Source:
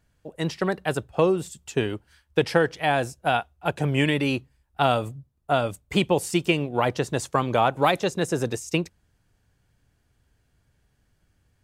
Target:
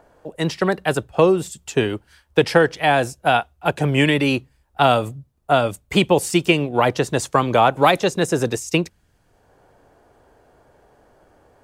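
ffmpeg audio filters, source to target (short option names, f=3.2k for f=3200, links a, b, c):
-filter_complex "[0:a]equalizer=f=83:w=0.57:g=-2.5,acrossover=split=400|960|5500[a][b][c][d];[b]acompressor=mode=upward:threshold=-43dB:ratio=2.5[e];[a][e][c][d]amix=inputs=4:normalize=0,volume=6dB"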